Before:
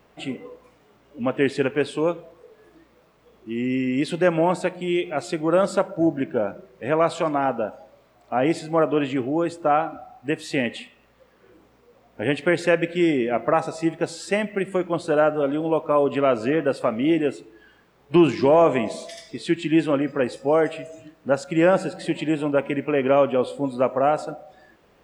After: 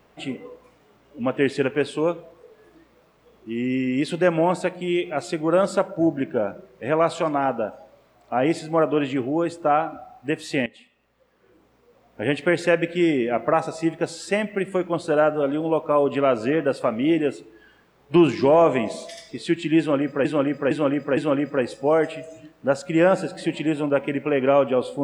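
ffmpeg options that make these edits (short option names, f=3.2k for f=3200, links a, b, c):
-filter_complex "[0:a]asplit=5[a][b][c][d][e];[a]atrim=end=10.66,asetpts=PTS-STARTPTS,afade=t=out:st=10.656:d=0.004:c=hsin:silence=0.141254[f];[b]atrim=start=10.66:end=20.252,asetpts=PTS-STARTPTS,afade=t=in:d=1.62:silence=0.141254[g];[c]atrim=start=19.788:end=20.252[h];[d]atrim=start=19.788:end=20.252[i];[e]atrim=start=19.788[j];[f][g]concat=n=2:v=0:a=1[k];[k][h]acrossfade=d=0.004:c1=hsin:c2=hsin[l];[l][i]acrossfade=d=0.004:c1=hsin:c2=hsin[m];[m][j]acrossfade=d=0.004:c1=hsin:c2=hsin"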